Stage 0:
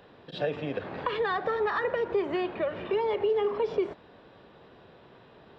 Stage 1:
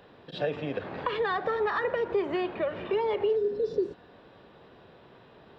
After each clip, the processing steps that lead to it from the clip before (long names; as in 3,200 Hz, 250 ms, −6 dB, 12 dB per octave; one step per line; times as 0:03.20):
healed spectral selection 0:03.39–0:04.05, 580–3,500 Hz after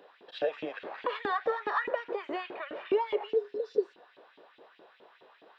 auto-filter high-pass saw up 4.8 Hz 280–3,100 Hz
level −4.5 dB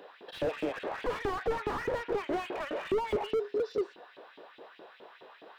slew-rate limiting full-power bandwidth 12 Hz
level +5.5 dB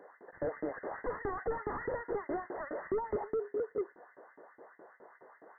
linear-phase brick-wall low-pass 2,100 Hz
level −4 dB